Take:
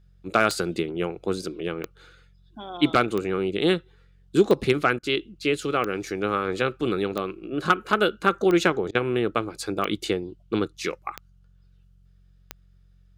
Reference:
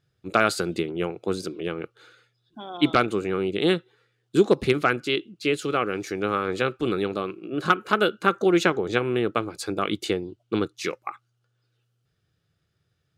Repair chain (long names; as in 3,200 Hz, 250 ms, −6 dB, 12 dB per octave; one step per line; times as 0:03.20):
clipped peaks rebuilt −8 dBFS
click removal
hum removal 45.5 Hz, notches 4
repair the gap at 0:04.99/0:08.91, 38 ms